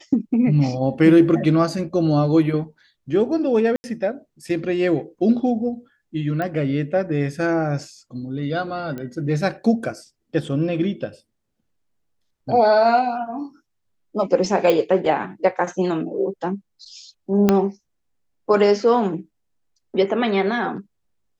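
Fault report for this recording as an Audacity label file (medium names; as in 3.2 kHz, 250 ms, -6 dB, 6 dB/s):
3.760000	3.840000	dropout 80 ms
6.420000	6.420000	pop -15 dBFS
8.980000	8.980000	pop -19 dBFS
14.700000	14.700000	pop -7 dBFS
17.490000	17.490000	pop -3 dBFS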